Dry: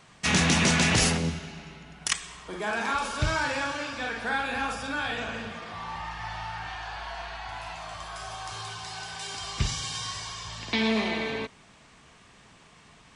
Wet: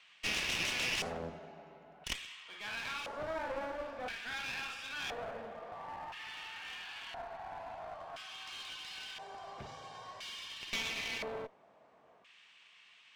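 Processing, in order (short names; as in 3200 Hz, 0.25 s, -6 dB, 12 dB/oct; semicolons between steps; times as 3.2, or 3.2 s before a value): in parallel at -2 dB: limiter -20.5 dBFS, peak gain reduction 9.5 dB; on the sum: LFO band-pass square 0.49 Hz 610–2800 Hz; one-sided clip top -40.5 dBFS; gain -4 dB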